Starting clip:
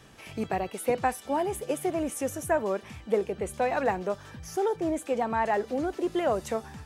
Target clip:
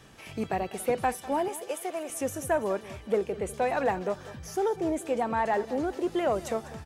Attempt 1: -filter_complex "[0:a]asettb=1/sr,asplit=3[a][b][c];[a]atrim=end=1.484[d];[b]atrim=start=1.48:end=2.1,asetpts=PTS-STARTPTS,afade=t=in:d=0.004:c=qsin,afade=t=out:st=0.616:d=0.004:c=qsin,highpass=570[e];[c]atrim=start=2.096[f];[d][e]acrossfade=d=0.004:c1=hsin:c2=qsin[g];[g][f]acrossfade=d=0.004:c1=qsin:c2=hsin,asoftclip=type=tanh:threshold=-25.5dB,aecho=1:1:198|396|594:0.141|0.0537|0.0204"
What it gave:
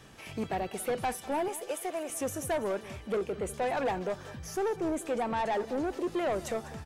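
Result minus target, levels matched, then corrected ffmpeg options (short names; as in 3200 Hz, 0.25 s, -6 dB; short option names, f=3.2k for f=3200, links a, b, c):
soft clip: distortion +15 dB
-filter_complex "[0:a]asettb=1/sr,asplit=3[a][b][c];[a]atrim=end=1.484[d];[b]atrim=start=1.48:end=2.1,asetpts=PTS-STARTPTS,afade=t=in:d=0.004:c=qsin,afade=t=out:st=0.616:d=0.004:c=qsin,highpass=570[e];[c]atrim=start=2.096[f];[d][e]acrossfade=d=0.004:c1=hsin:c2=qsin[g];[g][f]acrossfade=d=0.004:c1=qsin:c2=hsin,asoftclip=type=tanh:threshold=-13.5dB,aecho=1:1:198|396|594:0.141|0.0537|0.0204"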